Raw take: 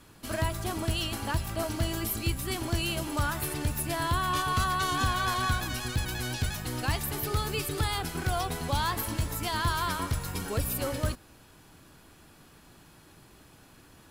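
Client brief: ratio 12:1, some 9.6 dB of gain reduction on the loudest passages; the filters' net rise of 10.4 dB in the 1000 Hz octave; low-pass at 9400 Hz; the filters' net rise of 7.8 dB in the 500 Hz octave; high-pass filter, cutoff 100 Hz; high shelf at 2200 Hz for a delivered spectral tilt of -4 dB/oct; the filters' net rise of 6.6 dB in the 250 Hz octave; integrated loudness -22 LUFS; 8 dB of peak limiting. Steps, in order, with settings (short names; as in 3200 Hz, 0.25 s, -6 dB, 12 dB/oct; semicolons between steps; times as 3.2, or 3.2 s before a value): HPF 100 Hz; LPF 9400 Hz; bell 250 Hz +6.5 dB; bell 500 Hz +5 dB; bell 1000 Hz +9 dB; high shelf 2200 Hz +8 dB; compressor 12:1, threshold -26 dBFS; gain +11 dB; limiter -13.5 dBFS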